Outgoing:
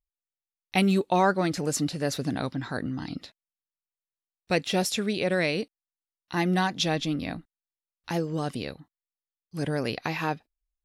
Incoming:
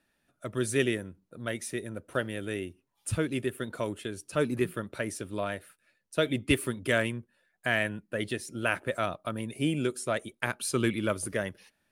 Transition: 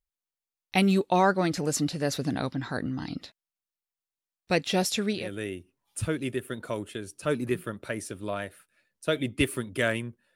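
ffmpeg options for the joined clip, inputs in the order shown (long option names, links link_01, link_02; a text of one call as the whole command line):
ffmpeg -i cue0.wav -i cue1.wav -filter_complex "[0:a]apad=whole_dur=10.35,atrim=end=10.35,atrim=end=5.32,asetpts=PTS-STARTPTS[link_01];[1:a]atrim=start=2.2:end=7.45,asetpts=PTS-STARTPTS[link_02];[link_01][link_02]acrossfade=duration=0.22:curve1=tri:curve2=tri" out.wav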